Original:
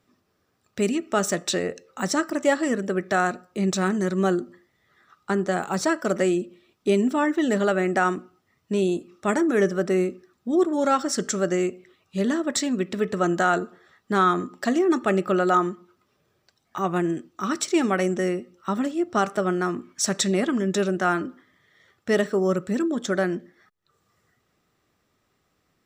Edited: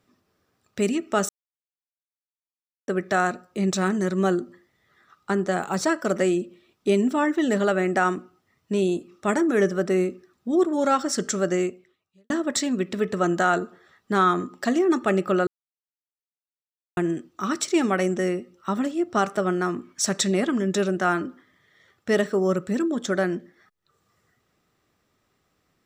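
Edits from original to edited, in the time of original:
1.29–2.88 mute
11.61–12.3 fade out quadratic
15.47–16.97 mute

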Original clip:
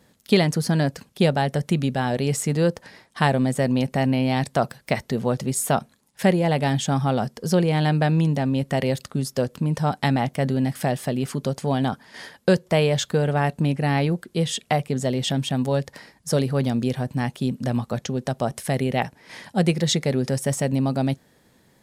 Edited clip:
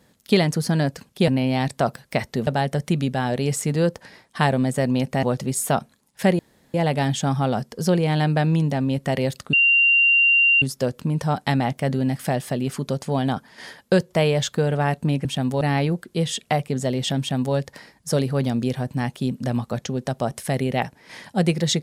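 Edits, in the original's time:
4.04–5.23 move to 1.28
6.39 insert room tone 0.35 s
9.18 add tone 2770 Hz -13 dBFS 1.09 s
15.39–15.75 copy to 13.81

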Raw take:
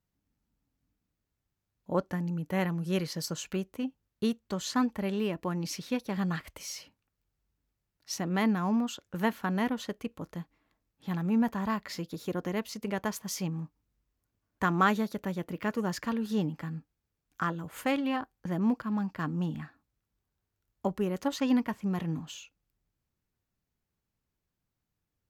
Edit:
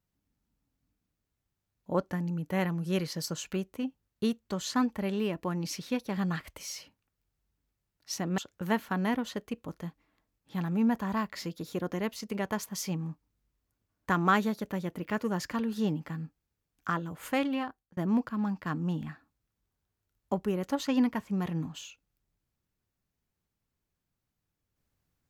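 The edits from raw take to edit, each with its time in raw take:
8.38–8.91 cut
18.03–18.5 fade out

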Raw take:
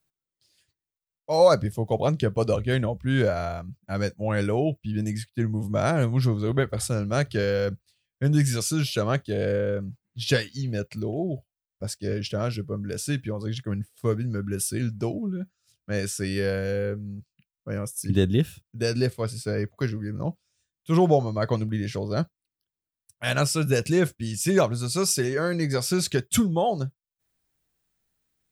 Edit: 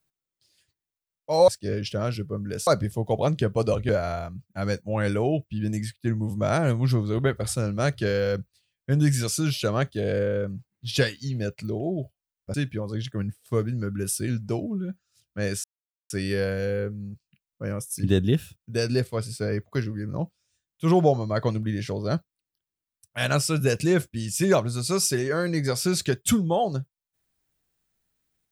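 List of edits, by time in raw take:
2.7–3.22 cut
11.87–13.06 move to 1.48
16.16 insert silence 0.46 s

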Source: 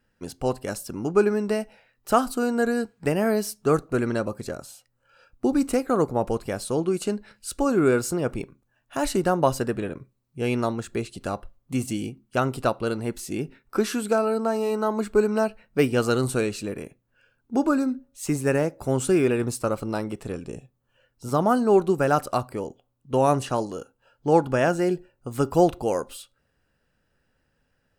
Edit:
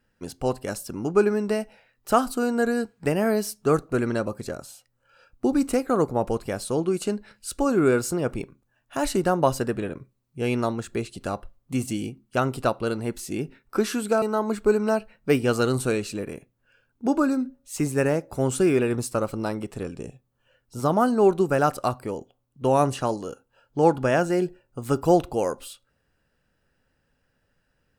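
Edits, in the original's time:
14.22–14.71 cut

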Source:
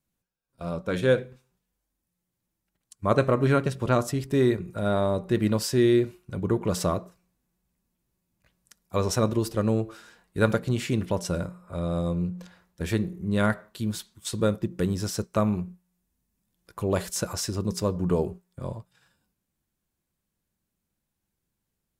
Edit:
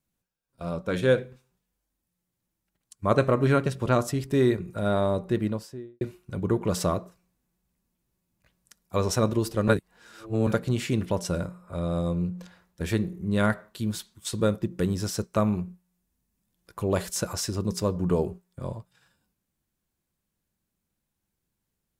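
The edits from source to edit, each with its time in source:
5.11–6.01 studio fade out
9.68–10.47 reverse

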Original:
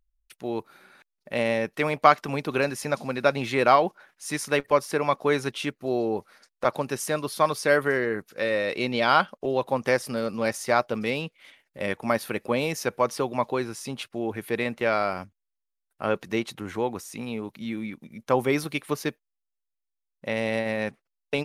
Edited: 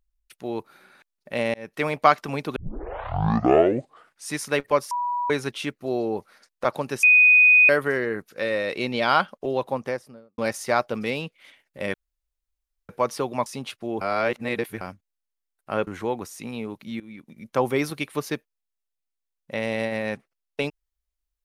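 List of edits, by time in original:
1.54–1.81 fade in
2.56 tape start 1.76 s
4.91–5.3 bleep 974 Hz -23 dBFS
7.03–7.69 bleep 2490 Hz -11 dBFS
9.52–10.38 studio fade out
11.94–12.89 room tone
13.46–13.78 cut
14.33–15.13 reverse
16.19–16.61 cut
17.74–18.14 fade in, from -17 dB

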